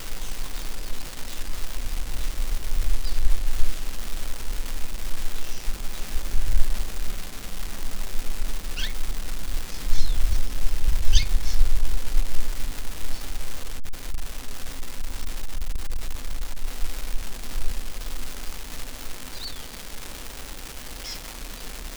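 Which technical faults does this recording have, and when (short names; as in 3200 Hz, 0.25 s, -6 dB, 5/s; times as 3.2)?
crackle 570/s -25 dBFS
13.55–16.65 clipped -19.5 dBFS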